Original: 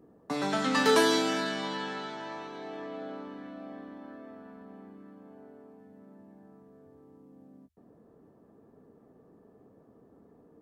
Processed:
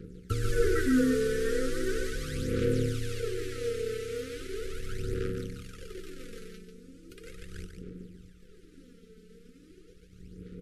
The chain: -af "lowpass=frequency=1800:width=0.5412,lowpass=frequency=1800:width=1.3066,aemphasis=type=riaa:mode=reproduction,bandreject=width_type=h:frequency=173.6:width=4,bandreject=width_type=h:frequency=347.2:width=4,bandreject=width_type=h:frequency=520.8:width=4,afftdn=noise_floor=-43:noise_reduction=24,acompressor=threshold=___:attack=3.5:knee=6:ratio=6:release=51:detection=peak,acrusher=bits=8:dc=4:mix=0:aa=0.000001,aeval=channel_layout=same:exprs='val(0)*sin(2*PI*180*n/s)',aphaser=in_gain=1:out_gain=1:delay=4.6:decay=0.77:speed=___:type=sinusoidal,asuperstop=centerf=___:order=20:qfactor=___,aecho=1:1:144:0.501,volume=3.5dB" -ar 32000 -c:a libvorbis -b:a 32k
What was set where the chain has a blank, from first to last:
-29dB, 0.38, 810, 1.1